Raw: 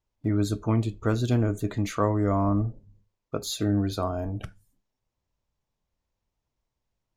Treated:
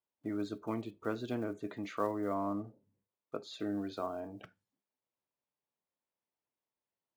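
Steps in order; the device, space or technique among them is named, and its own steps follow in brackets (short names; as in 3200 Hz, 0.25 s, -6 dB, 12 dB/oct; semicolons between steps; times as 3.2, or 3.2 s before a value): early digital voice recorder (BPF 260–3500 Hz; block floating point 7-bit); 2.34–3.54 high shelf 5400 Hz -7.5 dB; gain -8 dB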